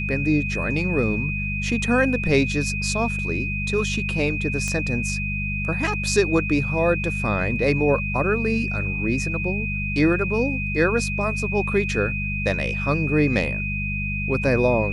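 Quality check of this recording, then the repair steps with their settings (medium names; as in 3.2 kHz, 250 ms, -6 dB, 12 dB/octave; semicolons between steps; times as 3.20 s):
hum 50 Hz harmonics 4 -28 dBFS
whine 2.5 kHz -27 dBFS
4.68 s: pop -14 dBFS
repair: de-click; de-hum 50 Hz, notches 4; band-stop 2.5 kHz, Q 30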